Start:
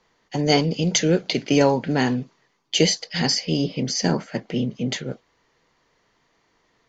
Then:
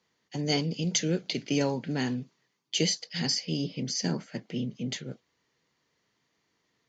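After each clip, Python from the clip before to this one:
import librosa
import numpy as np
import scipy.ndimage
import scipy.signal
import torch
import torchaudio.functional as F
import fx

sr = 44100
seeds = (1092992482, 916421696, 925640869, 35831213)

y = scipy.signal.sosfilt(scipy.signal.butter(2, 100.0, 'highpass', fs=sr, output='sos'), x)
y = fx.peak_eq(y, sr, hz=820.0, db=-8.0, octaves=2.5)
y = y * 10.0 ** (-5.5 / 20.0)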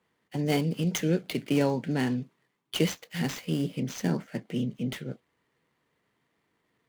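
y = scipy.ndimage.median_filter(x, 9, mode='constant')
y = y * 10.0 ** (2.5 / 20.0)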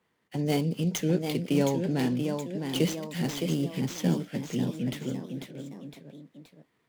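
y = fx.dynamic_eq(x, sr, hz=1700.0, q=0.95, threshold_db=-45.0, ratio=4.0, max_db=-5)
y = fx.echo_pitch(y, sr, ms=771, semitones=1, count=3, db_per_echo=-6.0)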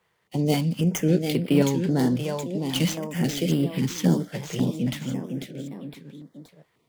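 y = fx.filter_held_notch(x, sr, hz=3.7, low_hz=260.0, high_hz=6400.0)
y = y * 10.0 ** (5.5 / 20.0)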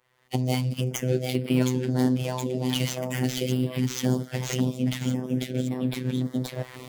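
y = fx.recorder_agc(x, sr, target_db=-16.5, rise_db_per_s=31.0, max_gain_db=30)
y = fx.robotise(y, sr, hz=127.0)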